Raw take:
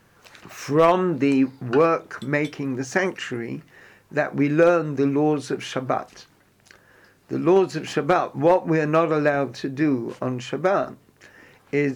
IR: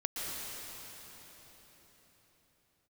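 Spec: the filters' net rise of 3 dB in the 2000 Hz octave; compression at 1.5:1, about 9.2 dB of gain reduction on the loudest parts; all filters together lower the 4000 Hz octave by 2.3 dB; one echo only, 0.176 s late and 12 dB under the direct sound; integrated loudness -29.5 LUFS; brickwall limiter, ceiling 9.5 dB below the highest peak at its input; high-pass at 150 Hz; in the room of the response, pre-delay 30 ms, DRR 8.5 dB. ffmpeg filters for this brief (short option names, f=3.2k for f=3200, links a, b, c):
-filter_complex "[0:a]highpass=150,equalizer=f=2k:t=o:g=5,equalizer=f=4k:t=o:g=-6,acompressor=threshold=-38dB:ratio=1.5,alimiter=limit=-21.5dB:level=0:latency=1,aecho=1:1:176:0.251,asplit=2[a][b];[1:a]atrim=start_sample=2205,adelay=30[c];[b][c]afir=irnorm=-1:irlink=0,volume=-13dB[d];[a][d]amix=inputs=2:normalize=0,volume=3dB"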